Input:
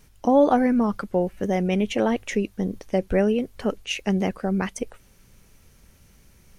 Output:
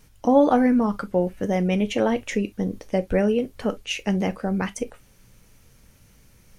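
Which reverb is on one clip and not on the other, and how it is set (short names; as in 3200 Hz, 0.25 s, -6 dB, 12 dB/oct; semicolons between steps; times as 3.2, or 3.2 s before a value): non-linear reverb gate 80 ms falling, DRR 10 dB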